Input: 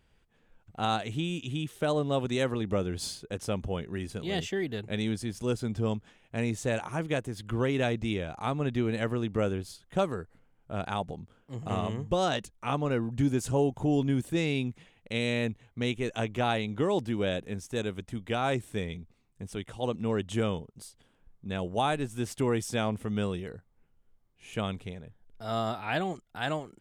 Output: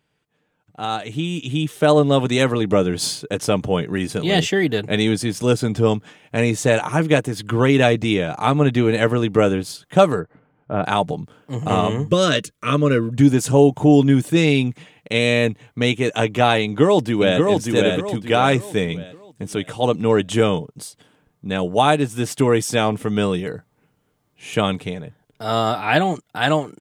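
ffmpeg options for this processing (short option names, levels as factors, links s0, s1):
-filter_complex "[0:a]asplit=3[s0][s1][s2];[s0]afade=t=out:st=10.19:d=0.02[s3];[s1]lowpass=1800,afade=t=in:st=10.19:d=0.02,afade=t=out:st=10.83:d=0.02[s4];[s2]afade=t=in:st=10.83:d=0.02[s5];[s3][s4][s5]amix=inputs=3:normalize=0,asettb=1/sr,asplit=3[s6][s7][s8];[s6]atrim=end=12.084[s9];[s7]atrim=start=12.08:end=13.14,asetpts=PTS-STARTPTS,afade=t=in:d=0.004:c=qsin,afade=t=out:st=1.056:d=0.004:c=qsin,asuperstop=centerf=810:order=4:qfactor=1.8[s10];[s8]atrim=start=13.136[s11];[s9][s10]acrossfade=d=0.004:c1=hsin:c2=qsin[s12];[s12][s11]acrossfade=d=0.004:c1=qsin:c2=hsin,asplit=2[s13][s14];[s14]afade=t=in:st=16.63:d=0.01,afade=t=out:st=17.41:d=0.01,aecho=0:1:580|1160|1740|2320|2900:0.707946|0.247781|0.0867234|0.0303532|0.0106236[s15];[s13][s15]amix=inputs=2:normalize=0,highpass=120,aecho=1:1:6.7:0.35,dynaudnorm=f=210:g=13:m=6.68"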